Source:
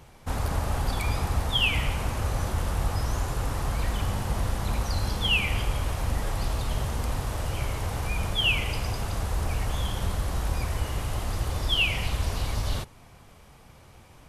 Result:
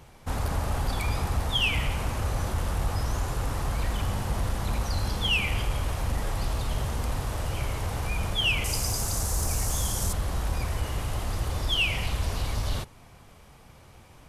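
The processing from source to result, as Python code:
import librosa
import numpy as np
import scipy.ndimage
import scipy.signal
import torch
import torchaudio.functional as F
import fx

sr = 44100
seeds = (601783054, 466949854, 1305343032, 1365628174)

y = fx.high_shelf_res(x, sr, hz=4500.0, db=12.0, q=1.5, at=(8.64, 10.13))
y = 10.0 ** (-15.5 / 20.0) * np.tanh(y / 10.0 ** (-15.5 / 20.0))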